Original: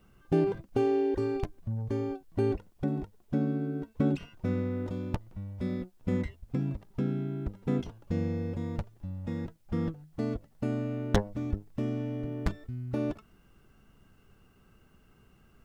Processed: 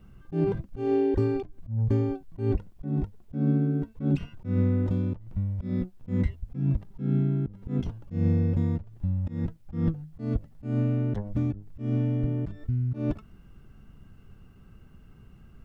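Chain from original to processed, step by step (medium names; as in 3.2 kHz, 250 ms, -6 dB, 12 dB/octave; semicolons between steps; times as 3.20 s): tone controls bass +10 dB, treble -4 dB; slow attack 171 ms; trim +1.5 dB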